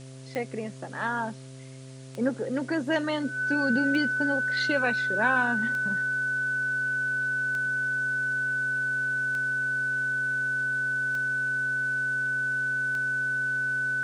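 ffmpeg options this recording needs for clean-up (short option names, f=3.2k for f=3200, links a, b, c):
-af "adeclick=t=4,bandreject=f=131.7:t=h:w=4,bandreject=f=263.4:t=h:w=4,bandreject=f=395.1:t=h:w=4,bandreject=f=526.8:t=h:w=4,bandreject=f=658.5:t=h:w=4,bandreject=f=1.5k:w=30,afwtdn=0.0025"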